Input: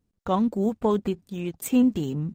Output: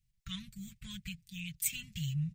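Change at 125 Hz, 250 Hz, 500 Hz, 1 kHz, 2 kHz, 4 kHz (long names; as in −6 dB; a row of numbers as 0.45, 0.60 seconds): −6.0 dB, −21.0 dB, below −40 dB, −34.5 dB, −1.5 dB, +0.5 dB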